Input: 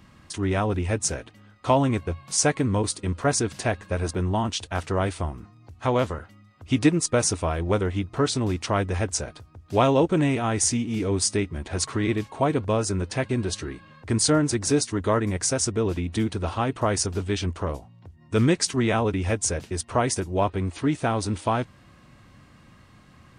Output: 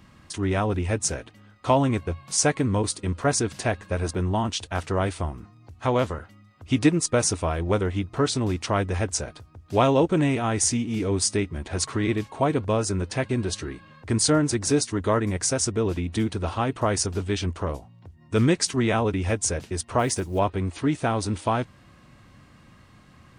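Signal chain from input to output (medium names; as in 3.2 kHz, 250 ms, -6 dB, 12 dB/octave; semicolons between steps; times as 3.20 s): 19.99–20.39 s: short-mantissa float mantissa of 4-bit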